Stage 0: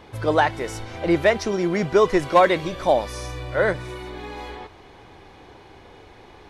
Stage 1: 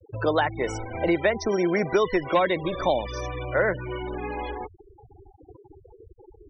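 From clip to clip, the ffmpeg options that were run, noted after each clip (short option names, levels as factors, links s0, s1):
-filter_complex "[0:a]acrossover=split=290|1900[s0][s1][s2];[s0]acompressor=threshold=0.0141:ratio=4[s3];[s1]acompressor=threshold=0.0501:ratio=4[s4];[s2]acompressor=threshold=0.0178:ratio=4[s5];[s3][s4][s5]amix=inputs=3:normalize=0,afftfilt=real='re*gte(hypot(re,im),0.0251)':imag='im*gte(hypot(re,im),0.0251)':win_size=1024:overlap=0.75,volume=1.58"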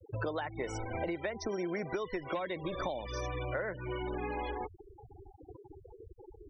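-af "acompressor=threshold=0.0316:ratio=10,volume=0.75"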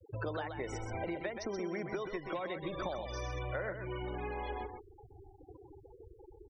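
-af "aecho=1:1:128:0.447,volume=0.708"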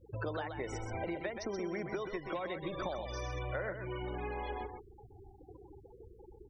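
-af "aeval=exprs='val(0)+0.000708*(sin(2*PI*60*n/s)+sin(2*PI*2*60*n/s)/2+sin(2*PI*3*60*n/s)/3+sin(2*PI*4*60*n/s)/4+sin(2*PI*5*60*n/s)/5)':c=same"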